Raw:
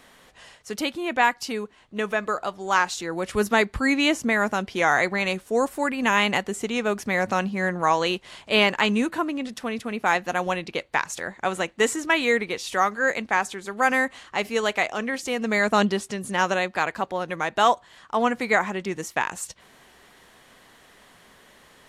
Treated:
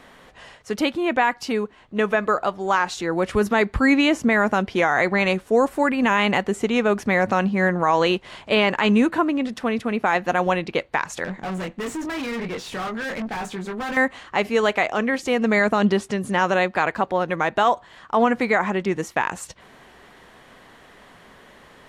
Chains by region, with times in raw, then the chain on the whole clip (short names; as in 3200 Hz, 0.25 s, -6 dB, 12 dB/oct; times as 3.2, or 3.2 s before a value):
11.24–13.97 bell 180 Hz +8.5 dB 1.2 oct + doubler 22 ms -5 dB + tube stage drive 32 dB, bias 0.35
whole clip: high shelf 3800 Hz -11.5 dB; limiter -15 dBFS; gain +6.5 dB